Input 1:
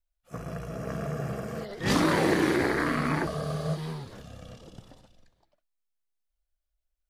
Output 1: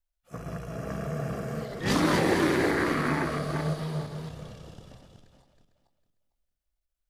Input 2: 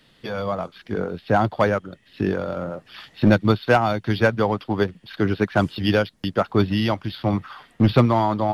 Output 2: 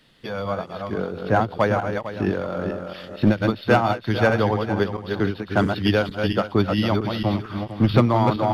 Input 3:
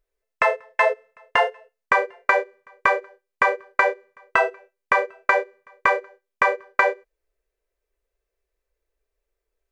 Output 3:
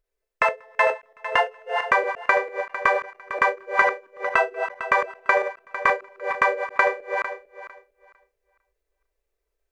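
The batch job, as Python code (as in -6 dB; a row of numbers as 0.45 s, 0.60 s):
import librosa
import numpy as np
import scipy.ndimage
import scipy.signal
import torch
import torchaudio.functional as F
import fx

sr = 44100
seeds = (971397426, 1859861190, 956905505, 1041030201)

y = fx.reverse_delay_fb(x, sr, ms=226, feedback_pct=43, wet_db=-5.0)
y = fx.end_taper(y, sr, db_per_s=260.0)
y = y * librosa.db_to_amplitude(-1.0)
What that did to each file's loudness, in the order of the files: 0.0 LU, -0.5 LU, -1.0 LU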